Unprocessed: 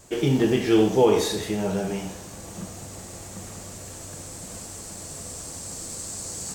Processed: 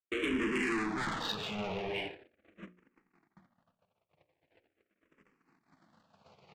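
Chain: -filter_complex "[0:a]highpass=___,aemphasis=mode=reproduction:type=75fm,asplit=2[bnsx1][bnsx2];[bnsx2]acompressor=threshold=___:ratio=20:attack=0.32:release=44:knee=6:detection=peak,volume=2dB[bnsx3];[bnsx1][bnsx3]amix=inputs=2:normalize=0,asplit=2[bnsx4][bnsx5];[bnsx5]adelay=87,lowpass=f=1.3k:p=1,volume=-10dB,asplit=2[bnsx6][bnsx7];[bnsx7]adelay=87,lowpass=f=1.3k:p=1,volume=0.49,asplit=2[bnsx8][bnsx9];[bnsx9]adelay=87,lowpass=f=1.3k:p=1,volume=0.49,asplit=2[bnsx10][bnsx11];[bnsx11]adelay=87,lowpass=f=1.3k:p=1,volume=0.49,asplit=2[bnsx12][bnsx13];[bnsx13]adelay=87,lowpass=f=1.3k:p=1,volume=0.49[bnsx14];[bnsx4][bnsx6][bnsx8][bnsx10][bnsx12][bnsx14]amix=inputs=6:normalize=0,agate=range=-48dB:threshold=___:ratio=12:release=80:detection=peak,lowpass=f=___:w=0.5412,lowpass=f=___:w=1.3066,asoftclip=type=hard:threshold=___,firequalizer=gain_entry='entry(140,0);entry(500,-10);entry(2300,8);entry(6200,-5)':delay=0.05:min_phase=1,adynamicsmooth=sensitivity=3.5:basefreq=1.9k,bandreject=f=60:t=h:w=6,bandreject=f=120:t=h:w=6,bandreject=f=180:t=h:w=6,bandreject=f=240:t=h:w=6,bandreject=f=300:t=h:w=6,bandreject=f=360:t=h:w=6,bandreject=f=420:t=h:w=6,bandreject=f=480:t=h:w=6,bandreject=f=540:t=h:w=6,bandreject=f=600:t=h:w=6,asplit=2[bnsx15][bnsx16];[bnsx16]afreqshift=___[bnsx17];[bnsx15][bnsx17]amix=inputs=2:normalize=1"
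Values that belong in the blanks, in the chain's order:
330, -31dB, -34dB, 8.4k, 8.4k, -23.5dB, -0.42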